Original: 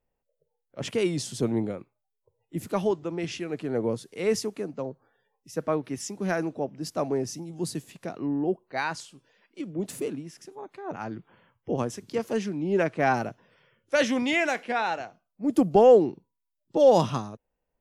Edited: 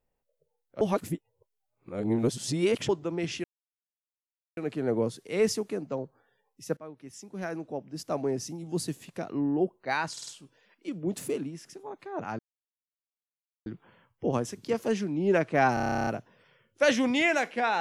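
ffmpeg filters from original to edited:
-filter_complex "[0:a]asplit=20[s0][s1][s2][s3][s4][s5][s6][s7][s8][s9][s10][s11][s12][s13][s14][s15][s16][s17][s18][s19];[s0]atrim=end=0.812[s20];[s1]atrim=start=0.808:end=2.892,asetpts=PTS-STARTPTS,areverse[s21];[s2]atrim=start=2.888:end=3.44,asetpts=PTS-STARTPTS,afade=t=out:st=0.548:d=0.004:c=hsin,apad=pad_dur=1.13[s22];[s3]atrim=start=3.44:end=5.64,asetpts=PTS-STARTPTS,afade=t=in:d=0.004:c=hsin,afade=t=out:st=2.196:d=0.004:c=hsin:silence=0.0944061[s23];[s4]atrim=start=5.64:end=9.042,asetpts=PTS-STARTPTS,afade=t=in:d=1.96:silence=0.0944061[s24];[s5]atrim=start=8.988:end=9.042[s25];[s6]atrim=start=8.988:end=9.042[s26];[s7]atrim=start=8.988:end=11.11,asetpts=PTS-STARTPTS,afade=t=out:st=2.118:d=0.004:c=hsin,apad=pad_dur=1.27[s27];[s8]atrim=start=11.11:end=13.222,asetpts=PTS-STARTPTS,afade=t=in:d=0.004:c=hsin[s28];[s9]atrim=start=13.188:end=13.222[s29];[s10]atrim=start=13.188:end=13.222[s30];[s11]atrim=start=13.188:end=13.222[s31];[s12]atrim=start=13.188:end=13.222[s32];[s13]atrim=start=13.188:end=13.222[s33];[s14]atrim=start=13.188:end=13.222[s34];[s15]atrim=start=13.188:end=13.222[s35];[s16]atrim=start=13.188:end=13.222[s36];[s17]atrim=start=13.188:end=13.222[s37];[s18]atrim=start=13.188:end=13.222[s38];[s19]atrim=start=13.188[s39];[s20][s21]acrossfade=d=0.004:c1=hsin:c2=hsin[s40];[s22][s23][s24]concat=n=3:v=0:a=1[s41];[s40][s41]acrossfade=d=0.004:c1=hsin:c2=hsin[s42];[s42][s25]acrossfade=d=0.004:c1=hsin:c2=hsin[s43];[s43][s26]acrossfade=d=0.004:c1=hsin:c2=hsin[s44];[s27][s28]concat=n=2:v=0:a=1[s45];[s44][s45]acrossfade=d=0.004:c1=hsin:c2=hsin[s46];[s46][s29]acrossfade=d=0.004:c1=hsin:c2=hsin[s47];[s47][s30]acrossfade=d=0.004:c1=hsin:c2=hsin[s48];[s48][s31]acrossfade=d=0.004:c1=hsin:c2=hsin[s49];[s49][s32]acrossfade=d=0.004:c1=hsin:c2=hsin[s50];[s50][s33]acrossfade=d=0.004:c1=hsin:c2=hsin[s51];[s51][s34]acrossfade=d=0.004:c1=hsin:c2=hsin[s52];[s52][s35]acrossfade=d=0.004:c1=hsin:c2=hsin[s53];[s53][s36]acrossfade=d=0.004:c1=hsin:c2=hsin[s54];[s54][s37]acrossfade=d=0.004:c1=hsin:c2=hsin[s55];[s55][s38]acrossfade=d=0.004:c1=hsin:c2=hsin[s56];[s56][s39]acrossfade=d=0.004:c1=hsin:c2=hsin"

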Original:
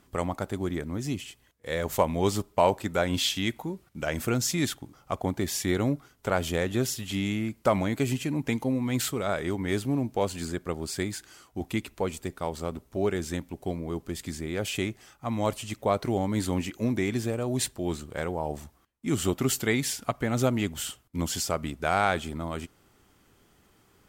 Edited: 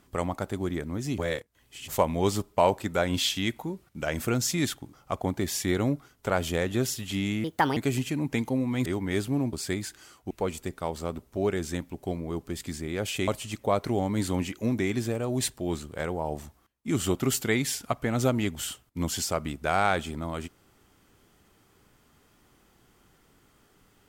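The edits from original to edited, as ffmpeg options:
-filter_complex "[0:a]asplit=9[s0][s1][s2][s3][s4][s5][s6][s7][s8];[s0]atrim=end=1.182[s9];[s1]atrim=start=1.178:end=1.882,asetpts=PTS-STARTPTS,areverse[s10];[s2]atrim=start=1.878:end=7.444[s11];[s3]atrim=start=7.44:end=7.91,asetpts=PTS-STARTPTS,asetrate=63504,aresample=44100[s12];[s4]atrim=start=7.906:end=9.002[s13];[s5]atrim=start=9.428:end=10.102[s14];[s6]atrim=start=10.818:end=11.602[s15];[s7]atrim=start=11.898:end=14.872[s16];[s8]atrim=start=15.458[s17];[s9][s10]acrossfade=d=0.004:c1=hsin:c2=hsin[s18];[s18][s11]acrossfade=d=0.004:c1=hsin:c2=hsin[s19];[s19][s12]acrossfade=d=0.004:c1=hsin:c2=hsin[s20];[s20][s13]acrossfade=d=0.004:c1=hsin:c2=hsin[s21];[s21][s14]acrossfade=d=0.004:c1=hsin:c2=hsin[s22];[s22][s15]acrossfade=d=0.004:c1=hsin:c2=hsin[s23];[s23][s16]acrossfade=d=0.004:c1=hsin:c2=hsin[s24];[s24][s17]acrossfade=d=0.004:c1=hsin:c2=hsin"

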